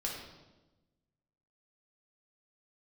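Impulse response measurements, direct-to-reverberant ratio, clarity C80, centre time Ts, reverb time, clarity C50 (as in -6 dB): -3.0 dB, 5.0 dB, 52 ms, 1.1 s, 2.5 dB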